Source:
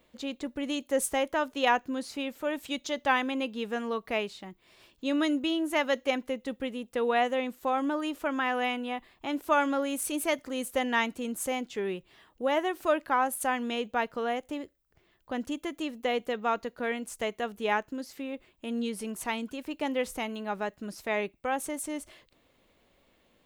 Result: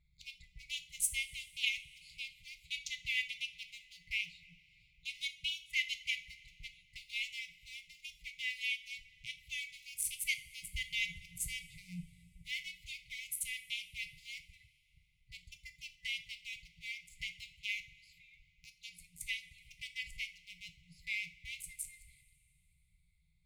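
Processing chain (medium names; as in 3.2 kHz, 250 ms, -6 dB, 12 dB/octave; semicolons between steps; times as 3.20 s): local Wiener filter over 15 samples; FFT band-reject 180–2000 Hz; 10.63–12.49 s: resonant low shelf 460 Hz +10 dB, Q 3; two-slope reverb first 0.34 s, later 2.8 s, from -20 dB, DRR 6.5 dB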